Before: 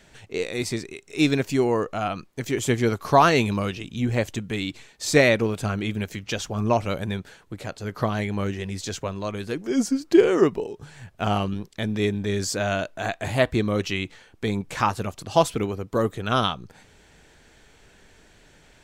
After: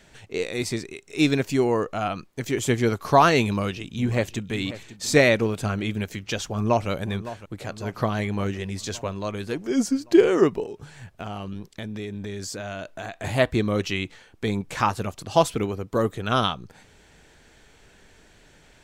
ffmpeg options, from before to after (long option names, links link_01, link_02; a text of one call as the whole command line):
ffmpeg -i in.wav -filter_complex "[0:a]asplit=2[link_01][link_02];[link_02]afade=type=in:start_time=3.44:duration=0.01,afade=type=out:start_time=4.52:duration=0.01,aecho=0:1:540|1080|1620|2160:0.177828|0.0800226|0.0360102|0.0162046[link_03];[link_01][link_03]amix=inputs=2:normalize=0,asplit=2[link_04][link_05];[link_05]afade=type=in:start_time=6.48:duration=0.01,afade=type=out:start_time=6.89:duration=0.01,aecho=0:1:560|1120|1680|2240|2800|3360|3920:0.199526|0.129692|0.0842998|0.0547949|0.0356167|0.0231508|0.015048[link_06];[link_04][link_06]amix=inputs=2:normalize=0,asettb=1/sr,asplit=3[link_07][link_08][link_09];[link_07]atrim=end=10.634[link_10];[link_08]atrim=start=10.63:end=13.24,asetpts=PTS-STARTPTS,afade=type=in:duration=0.004:curve=qsin,afade=type=out:start_time=2.606:duration=0.004:curve=qsin,acompressor=threshold=-30dB:ratio=6:attack=3.2:release=140:knee=1:detection=peak[link_11];[link_09]atrim=start=13.236[link_12];[link_10][link_11]acrossfade=duration=0.004:curve1=hsin:curve2=qsin[link_13];[link_13][link_12]acrossfade=duration=0.004:curve1=qsin:curve2=hsin" out.wav